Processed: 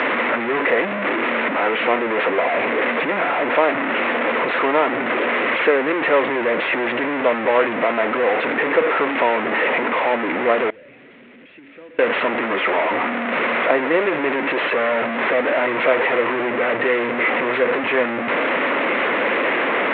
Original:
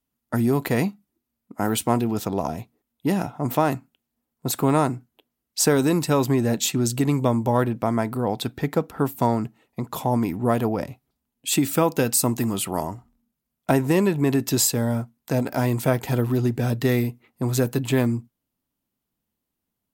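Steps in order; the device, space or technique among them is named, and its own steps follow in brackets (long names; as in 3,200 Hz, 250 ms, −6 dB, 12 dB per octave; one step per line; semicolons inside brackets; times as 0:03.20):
digital answering machine (band-pass filter 360–3,000 Hz; linear delta modulator 16 kbit/s, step −17.5 dBFS; loudspeaker in its box 360–4,000 Hz, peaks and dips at 530 Hz +6 dB, 790 Hz −5 dB, 2,000 Hz +5 dB, 3,100 Hz −6 dB)
0:10.70–0:11.99: guitar amp tone stack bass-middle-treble 10-0-1
level +5 dB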